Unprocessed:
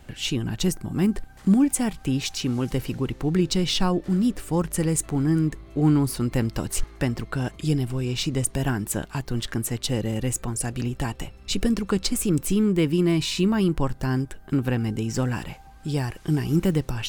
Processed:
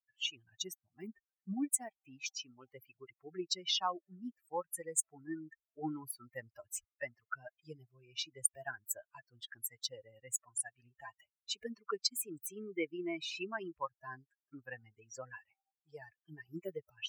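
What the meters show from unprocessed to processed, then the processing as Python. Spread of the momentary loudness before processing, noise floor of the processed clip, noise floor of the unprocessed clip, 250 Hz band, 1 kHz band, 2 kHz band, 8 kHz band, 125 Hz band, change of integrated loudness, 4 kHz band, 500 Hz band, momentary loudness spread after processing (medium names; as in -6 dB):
8 LU, under -85 dBFS, -46 dBFS, -23.5 dB, -10.0 dB, -11.0 dB, -8.5 dB, -32.5 dB, -15.0 dB, -9.5 dB, -16.5 dB, 19 LU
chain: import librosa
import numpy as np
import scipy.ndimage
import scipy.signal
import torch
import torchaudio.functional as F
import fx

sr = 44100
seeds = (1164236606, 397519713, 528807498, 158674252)

y = fx.bin_expand(x, sr, power=3.0)
y = scipy.signal.sosfilt(scipy.signal.butter(2, 550.0, 'highpass', fs=sr, output='sos'), y)
y = y * librosa.db_to_amplitude(-2.0)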